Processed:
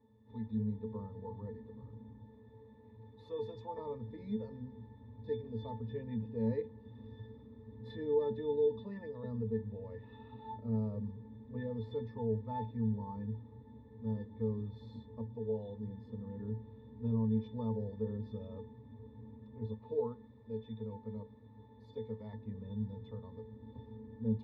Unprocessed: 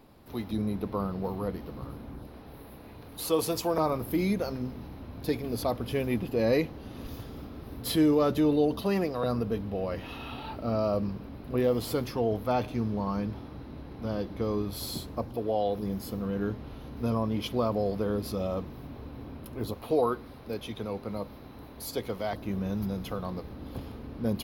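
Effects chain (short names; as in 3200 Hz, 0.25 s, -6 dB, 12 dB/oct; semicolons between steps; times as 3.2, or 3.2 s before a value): LPF 6400 Hz; octave resonator A, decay 0.18 s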